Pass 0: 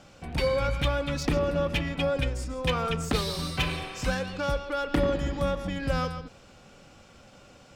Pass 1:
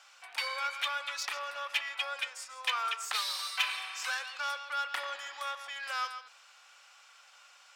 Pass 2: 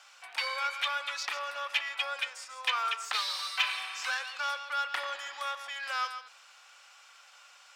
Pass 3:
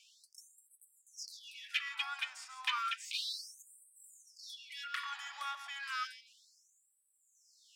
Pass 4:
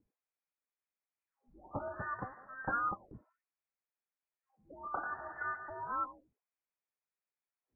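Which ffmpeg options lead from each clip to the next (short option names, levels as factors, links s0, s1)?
-af "highpass=f=1000:w=0.5412,highpass=f=1000:w=1.3066"
-filter_complex "[0:a]acrossover=split=6300[s0][s1];[s1]acompressor=threshold=0.00251:ratio=4:attack=1:release=60[s2];[s0][s2]amix=inputs=2:normalize=0,volume=1.26"
-af "afftfilt=real='re*gte(b*sr/1024,580*pow(7800/580,0.5+0.5*sin(2*PI*0.32*pts/sr)))':imag='im*gte(b*sr/1024,580*pow(7800/580,0.5+0.5*sin(2*PI*0.32*pts/sr)))':win_size=1024:overlap=0.75,volume=0.562"
-af "lowpass=f=2200:t=q:w=0.5098,lowpass=f=2200:t=q:w=0.6013,lowpass=f=2200:t=q:w=0.9,lowpass=f=2200:t=q:w=2.563,afreqshift=-2600,volume=1.41"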